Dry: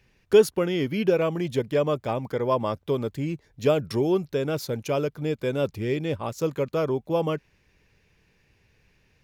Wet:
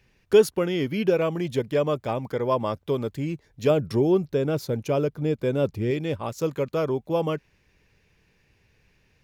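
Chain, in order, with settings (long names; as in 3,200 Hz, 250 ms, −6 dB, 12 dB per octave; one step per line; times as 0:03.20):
0:03.70–0:05.91: tilt shelving filter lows +3.5 dB, about 850 Hz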